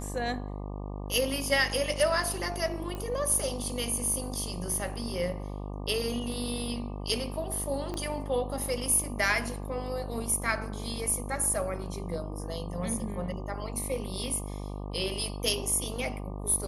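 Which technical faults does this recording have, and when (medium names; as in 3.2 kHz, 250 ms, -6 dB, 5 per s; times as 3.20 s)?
buzz 50 Hz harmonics 24 -37 dBFS
2.95 s: pop -23 dBFS
7.94 s: pop -22 dBFS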